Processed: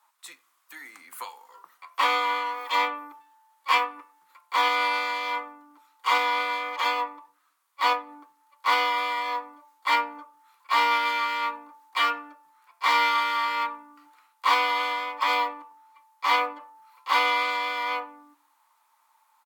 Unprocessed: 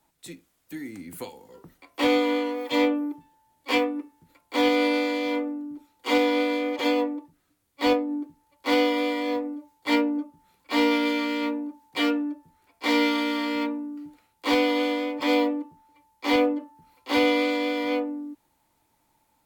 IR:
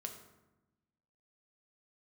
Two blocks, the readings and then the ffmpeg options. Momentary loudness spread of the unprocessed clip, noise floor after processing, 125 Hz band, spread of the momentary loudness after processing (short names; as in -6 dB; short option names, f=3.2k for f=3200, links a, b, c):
17 LU, -68 dBFS, n/a, 18 LU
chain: -filter_complex "[0:a]highpass=f=1.1k:t=q:w=4.9,asplit=2[a][b];[b]adelay=89,lowpass=f=2k:p=1,volume=-22dB,asplit=2[c][d];[d]adelay=89,lowpass=f=2k:p=1,volume=0.41,asplit=2[e][f];[f]adelay=89,lowpass=f=2k:p=1,volume=0.41[g];[a][c][e][g]amix=inputs=4:normalize=0"